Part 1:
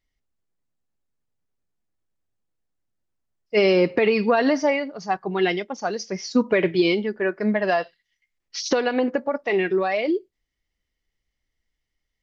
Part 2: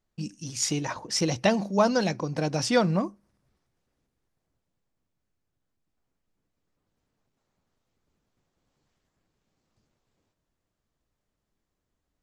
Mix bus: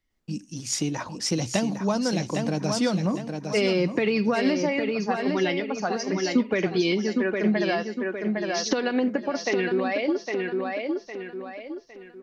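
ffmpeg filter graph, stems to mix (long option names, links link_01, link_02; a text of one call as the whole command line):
ffmpeg -i stem1.wav -i stem2.wav -filter_complex "[0:a]equalizer=frequency=1500:width=1.5:gain=2.5,volume=-0.5dB,asplit=2[link_01][link_02];[link_02]volume=-7dB[link_03];[1:a]adelay=100,volume=-0.5dB,asplit=2[link_04][link_05];[link_05]volume=-7dB[link_06];[link_03][link_06]amix=inputs=2:normalize=0,aecho=0:1:808|1616|2424|3232|4040:1|0.35|0.122|0.0429|0.015[link_07];[link_01][link_04][link_07]amix=inputs=3:normalize=0,equalizer=frequency=260:width_type=o:width=1:gain=5,acrossover=split=170|3000[link_08][link_09][link_10];[link_09]acompressor=threshold=-24dB:ratio=3[link_11];[link_08][link_11][link_10]amix=inputs=3:normalize=0" out.wav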